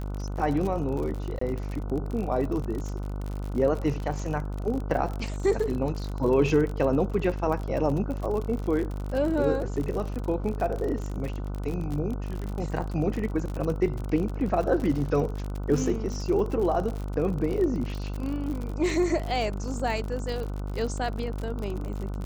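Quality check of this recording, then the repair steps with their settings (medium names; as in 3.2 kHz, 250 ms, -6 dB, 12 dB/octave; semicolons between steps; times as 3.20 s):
buzz 50 Hz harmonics 30 -32 dBFS
crackle 50 per s -31 dBFS
1.39–1.41 s: dropout 24 ms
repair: de-click; de-hum 50 Hz, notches 30; interpolate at 1.39 s, 24 ms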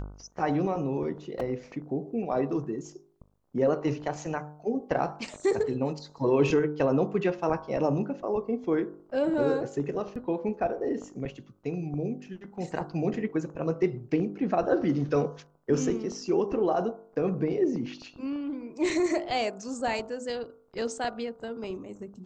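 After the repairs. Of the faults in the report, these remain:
nothing left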